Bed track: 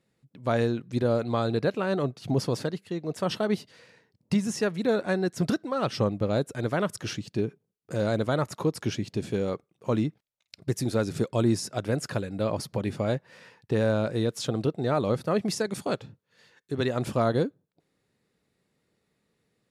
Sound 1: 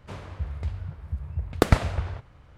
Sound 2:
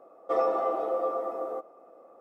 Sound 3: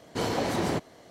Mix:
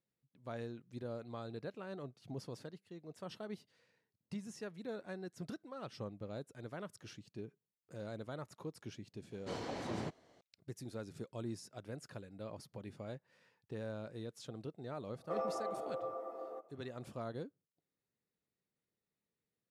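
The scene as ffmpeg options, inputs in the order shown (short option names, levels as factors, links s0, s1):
-filter_complex "[0:a]volume=0.112[s0];[3:a]lowpass=7600,atrim=end=1.1,asetpts=PTS-STARTPTS,volume=0.2,afade=t=in:d=0.004:c=hsin,afade=t=out:st=1.096:d=0.004:c=hsin,adelay=9310[s1];[2:a]atrim=end=2.2,asetpts=PTS-STARTPTS,volume=0.237,afade=t=in:d=0.004:c=hsin,afade=t=out:st=2.196:d=0.004:c=hsin,adelay=15000[s2];[s0][s1][s2]amix=inputs=3:normalize=0"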